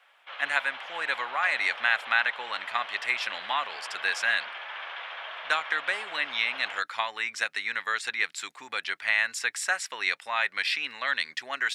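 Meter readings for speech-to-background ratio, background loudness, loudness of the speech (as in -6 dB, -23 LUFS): 10.0 dB, -38.5 LUFS, -28.5 LUFS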